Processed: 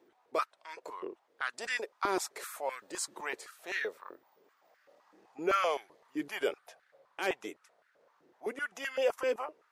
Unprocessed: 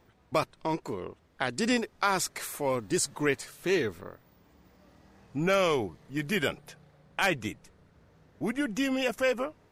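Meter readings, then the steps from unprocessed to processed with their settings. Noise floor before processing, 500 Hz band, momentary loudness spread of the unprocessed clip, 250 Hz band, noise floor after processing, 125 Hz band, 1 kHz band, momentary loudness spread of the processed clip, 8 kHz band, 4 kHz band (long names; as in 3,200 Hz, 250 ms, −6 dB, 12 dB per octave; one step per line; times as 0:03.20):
−63 dBFS, −5.0 dB, 12 LU, −12.5 dB, −72 dBFS, −24.0 dB, −3.5 dB, 15 LU, −7.5 dB, −7.5 dB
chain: transient designer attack −5 dB, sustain −1 dB
high-pass on a step sequencer 7.8 Hz 340–1,600 Hz
level −7 dB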